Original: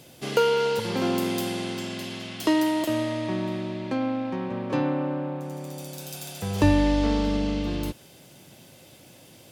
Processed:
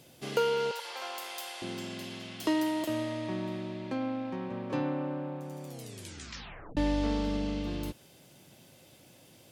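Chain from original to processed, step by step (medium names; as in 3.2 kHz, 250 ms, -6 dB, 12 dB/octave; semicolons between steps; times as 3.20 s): 0.71–1.62 s: high-pass 660 Hz 24 dB/octave; 5.66 s: tape stop 1.11 s; trim -6.5 dB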